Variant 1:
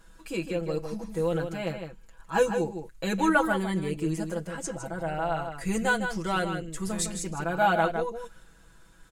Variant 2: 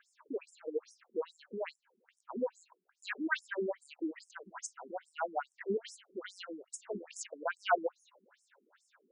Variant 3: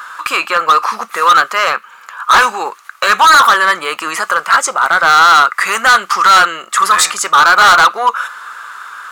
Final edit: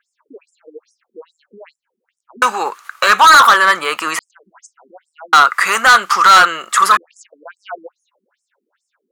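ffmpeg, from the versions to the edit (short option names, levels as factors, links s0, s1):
-filter_complex "[2:a]asplit=2[s0][s1];[1:a]asplit=3[s2][s3][s4];[s2]atrim=end=2.422[s5];[s0]atrim=start=2.418:end=4.192[s6];[s3]atrim=start=4.188:end=5.332[s7];[s1]atrim=start=5.328:end=6.972[s8];[s4]atrim=start=6.968[s9];[s5][s6]acrossfade=d=0.004:c1=hsin:c2=hsin[s10];[s10][s7]acrossfade=d=0.004:c1=hsin:c2=hsin[s11];[s11][s8]acrossfade=d=0.004:c1=hsin:c2=hsin[s12];[s12][s9]acrossfade=d=0.004:c1=hsin:c2=hsin"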